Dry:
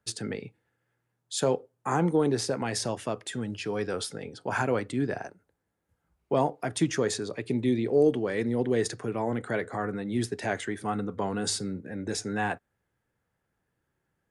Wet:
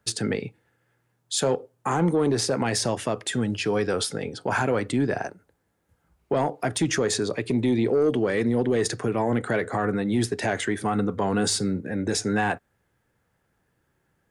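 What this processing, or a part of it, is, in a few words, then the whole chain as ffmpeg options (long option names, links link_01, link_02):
soft clipper into limiter: -af "asoftclip=type=tanh:threshold=-16.5dB,alimiter=limit=-23dB:level=0:latency=1:release=82,volume=8dB"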